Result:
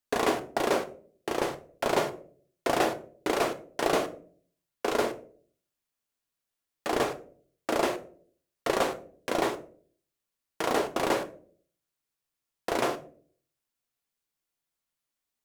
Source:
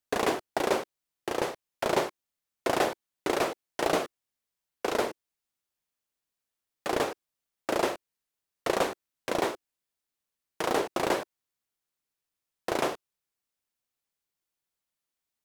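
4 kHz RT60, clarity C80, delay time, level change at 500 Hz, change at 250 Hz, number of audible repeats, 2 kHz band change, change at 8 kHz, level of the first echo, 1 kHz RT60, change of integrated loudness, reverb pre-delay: 0.25 s, 19.5 dB, no echo, +1.0 dB, +1.5 dB, no echo, +0.5 dB, +0.5 dB, no echo, 0.40 s, +0.5 dB, 3 ms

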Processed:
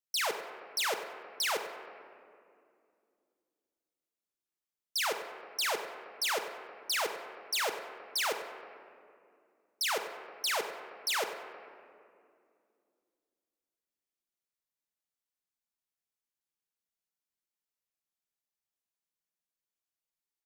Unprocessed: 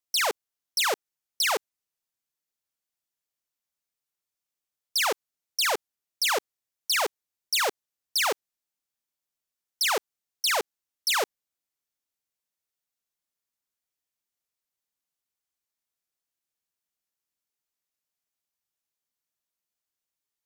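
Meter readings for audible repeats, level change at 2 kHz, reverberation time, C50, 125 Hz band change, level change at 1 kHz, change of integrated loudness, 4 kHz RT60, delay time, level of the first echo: 1, -6.0 dB, 2.4 s, 7.0 dB, no reading, -6.0 dB, -7.0 dB, 1.4 s, 96 ms, -14.0 dB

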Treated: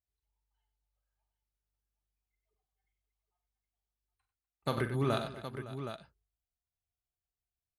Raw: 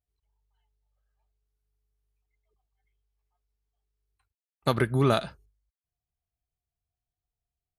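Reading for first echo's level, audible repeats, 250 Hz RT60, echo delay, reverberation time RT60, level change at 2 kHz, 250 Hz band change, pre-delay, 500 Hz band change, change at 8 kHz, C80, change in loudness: -9.5 dB, 5, no reverb, 44 ms, no reverb, -7.0 dB, -7.5 dB, no reverb, -7.5 dB, -7.0 dB, no reverb, -10.0 dB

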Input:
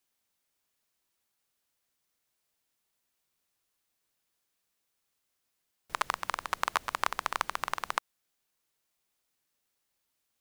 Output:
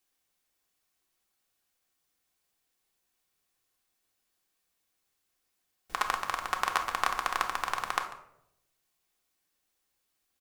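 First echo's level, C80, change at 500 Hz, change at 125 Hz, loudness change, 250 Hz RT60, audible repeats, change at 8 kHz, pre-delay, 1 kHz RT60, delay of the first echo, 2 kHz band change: -17.5 dB, 12.0 dB, +1.0 dB, +1.5 dB, +2.0 dB, 0.95 s, 1, +1.5 dB, 3 ms, 0.65 s, 144 ms, +2.0 dB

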